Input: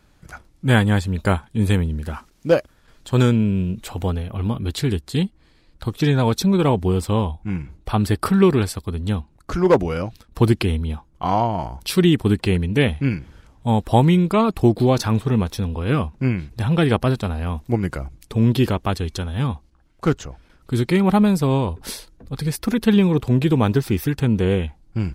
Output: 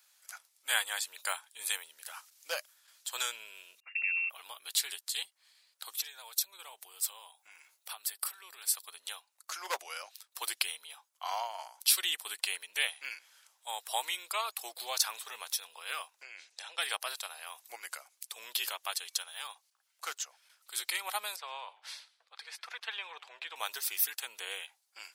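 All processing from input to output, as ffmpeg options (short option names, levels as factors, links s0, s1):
-filter_complex "[0:a]asettb=1/sr,asplit=3[s0][s1][s2];[s0]atrim=end=3.804[s3];[s1]atrim=start=3.8:end=4.3,asetpts=PTS-STARTPTS,afade=t=in:d=0.004:c=qsin,afade=t=out:st=0.496:d=0.004:c=qsin,agate=range=0.0316:threshold=0.02:ratio=16:release=100:detection=peak,acompressor=threshold=0.0708:ratio=6:attack=3.2:release=140:knee=1:detection=peak,lowpass=f=2400:t=q:w=0.5098,lowpass=f=2400:t=q:w=0.6013,lowpass=f=2400:t=q:w=0.9,lowpass=f=2400:t=q:w=2.563,afreqshift=-2800[s4];[s2]atrim=start=4.296[s5];[s3][s4]acrossfade=d=0.004:c1=hsin:c2=qsin[s6];[s6][s5]acrossfade=d=0.004:c1=qsin:c2=hsin,asettb=1/sr,asplit=3[s7][s8][s9];[s7]atrim=end=5.944[s10];[s8]atrim=start=5.94:end=8.76,asetpts=PTS-STARTPTS,afade=t=in:d=0.004:c=qsin,afade=t=out:st=2.816:d=0.004:c=qsin,highshelf=f=11000:g=9,acompressor=threshold=0.0501:ratio=10:attack=3.2:release=140:knee=1:detection=peak[s11];[s9]atrim=start=8.756[s12];[s10][s11]acrossfade=d=0.004:c1=hsin:c2=qsin[s13];[s13][s12]acrossfade=d=0.004:c1=qsin:c2=hsin,asettb=1/sr,asplit=3[s14][s15][s16];[s14]atrim=end=16.224[s17];[s15]atrim=start=16.22:end=16.78,asetpts=PTS-STARTPTS,afade=t=in:d=0.004:c=qsin,afade=t=out:st=0.556:d=0.004:c=qsin,highpass=f=310:w=0.5412,highpass=f=310:w=1.3066,equalizer=f=340:t=q:w=4:g=6,equalizer=f=530:t=q:w=4:g=4,equalizer=f=1100:t=q:w=4:g=-6,equalizer=f=6200:t=q:w=4:g=3,lowpass=f=8200:w=0.5412,lowpass=f=8200:w=1.3066,acompressor=threshold=0.0316:ratio=5:attack=3.2:release=140:knee=1:detection=peak[s18];[s16]atrim=start=16.776[s19];[s17][s18]acrossfade=d=0.004:c1=hsin:c2=qsin[s20];[s20][s19]acrossfade=d=0.004:c1=qsin:c2=hsin,asettb=1/sr,asplit=3[s21][s22][s23];[s21]atrim=end=21.364[s24];[s22]atrim=start=21.36:end=23.56,asetpts=PTS-STARTPTS,afade=t=in:d=0.004:c=qsin,afade=t=out:st=2.196:d=0.004:c=qsin,highpass=530,lowpass=2600,asplit=4[s25][s26][s27][s28];[s26]adelay=109,afreqshift=-100,volume=0.1[s29];[s27]adelay=218,afreqshift=-200,volume=0.032[s30];[s28]adelay=327,afreqshift=-300,volume=0.0102[s31];[s25][s29][s30][s31]amix=inputs=4:normalize=0,atrim=end_sample=97020[s32];[s23]atrim=start=23.556[s33];[s24][s32]acrossfade=d=0.004:c1=hsin:c2=qsin[s34];[s34][s33]acrossfade=d=0.004:c1=qsin:c2=hsin,highpass=f=620:w=0.5412,highpass=f=620:w=1.3066,aderivative,volume=1.5"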